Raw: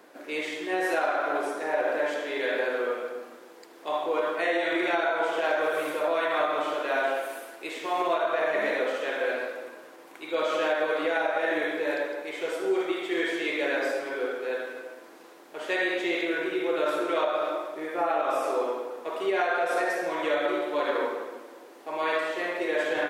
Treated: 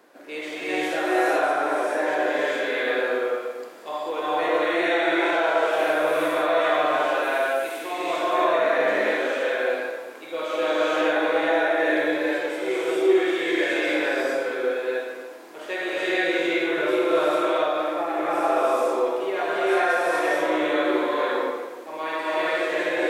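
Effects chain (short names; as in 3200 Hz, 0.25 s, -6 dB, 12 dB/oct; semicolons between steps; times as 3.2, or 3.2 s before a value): non-linear reverb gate 0.47 s rising, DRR -6.5 dB; gain -2.5 dB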